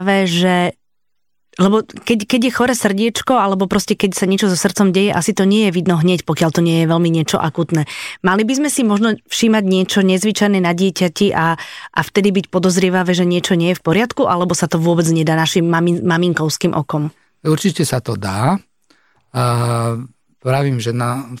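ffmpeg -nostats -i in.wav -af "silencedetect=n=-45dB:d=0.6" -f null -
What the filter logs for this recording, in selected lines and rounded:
silence_start: 0.74
silence_end: 1.53 | silence_duration: 0.79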